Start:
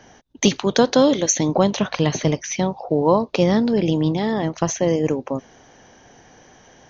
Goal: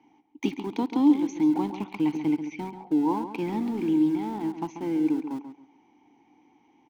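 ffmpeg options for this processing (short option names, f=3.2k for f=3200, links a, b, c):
-filter_complex "[0:a]asplit=3[a][b][c];[a]bandpass=f=300:t=q:w=8,volume=0dB[d];[b]bandpass=f=870:t=q:w=8,volume=-6dB[e];[c]bandpass=f=2.24k:t=q:w=8,volume=-9dB[f];[d][e][f]amix=inputs=3:normalize=0,asplit=2[g][h];[h]aeval=exprs='val(0)*gte(abs(val(0)),0.0237)':c=same,volume=-11dB[i];[g][i]amix=inputs=2:normalize=0,asplit=2[j][k];[k]adelay=137,lowpass=f=3.7k:p=1,volume=-9.5dB,asplit=2[l][m];[m]adelay=137,lowpass=f=3.7k:p=1,volume=0.24,asplit=2[n][o];[o]adelay=137,lowpass=f=3.7k:p=1,volume=0.24[p];[j][l][n][p]amix=inputs=4:normalize=0"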